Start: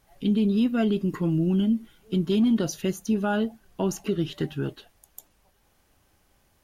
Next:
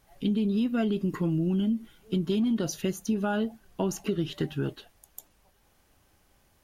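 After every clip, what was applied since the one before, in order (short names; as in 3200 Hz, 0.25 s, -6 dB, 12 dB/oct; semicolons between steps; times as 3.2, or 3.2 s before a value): compressor, threshold -23 dBFS, peak gain reduction 5.5 dB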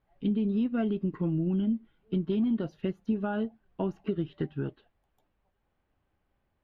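air absorption 390 m; upward expander 1.5:1, over -43 dBFS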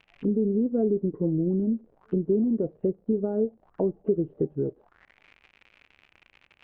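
crackle 120/s -39 dBFS; envelope low-pass 470–2700 Hz down, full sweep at -33.5 dBFS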